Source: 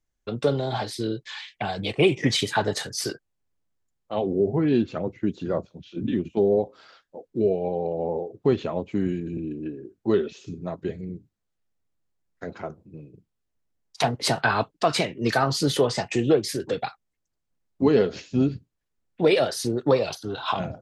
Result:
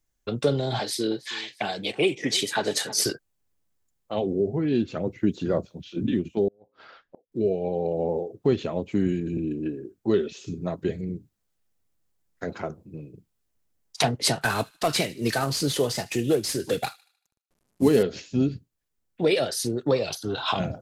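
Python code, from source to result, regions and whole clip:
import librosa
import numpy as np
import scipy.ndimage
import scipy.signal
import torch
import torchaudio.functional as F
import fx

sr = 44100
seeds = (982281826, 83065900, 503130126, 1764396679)

y = fx.chain(x, sr, fx.highpass(hz=230.0, slope=12),
    fx.echo_feedback(ms=320, feedback_pct=43, wet_db=-20.5), at=(0.79, 3.06))
y = fx.chain(y, sr, fx.lowpass(hz=2600.0, slope=12),
    fx.over_compress(threshold_db=-25.0, ratio=-0.5),
    fx.gate_flip(shuts_db=-29.0, range_db=-28), at=(6.48, 7.32))
y = fx.chain(y, sr, fx.cvsd(bps=64000),
    fx.echo_wet_highpass(ms=76, feedback_pct=44, hz=2400.0, wet_db=-18.5), at=(14.41, 18.03))
y = fx.dynamic_eq(y, sr, hz=990.0, q=1.2, threshold_db=-37.0, ratio=4.0, max_db=-5)
y = fx.rider(y, sr, range_db=3, speed_s=0.5)
y = fx.high_shelf(y, sr, hz=7100.0, db=8.5)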